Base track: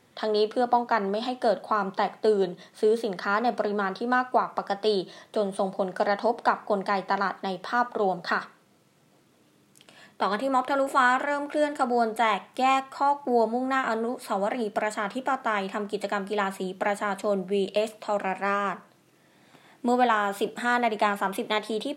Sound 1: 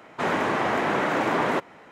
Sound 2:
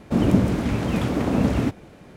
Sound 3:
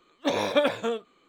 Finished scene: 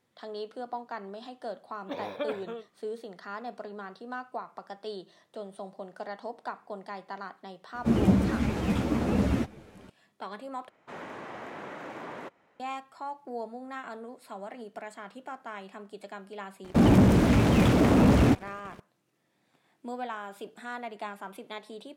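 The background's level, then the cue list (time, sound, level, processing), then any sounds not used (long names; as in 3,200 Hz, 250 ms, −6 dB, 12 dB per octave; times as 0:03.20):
base track −14 dB
0:01.64: mix in 3 −11 dB + parametric band 7,200 Hz −14.5 dB 1.3 octaves
0:07.74: mix in 2 −2 dB + string-ensemble chorus
0:10.69: overwrite with 1 −17.5 dB + parametric band 550 Hz +2.5 dB 0.22 octaves
0:16.64: mix in 2 −8 dB + leveller curve on the samples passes 3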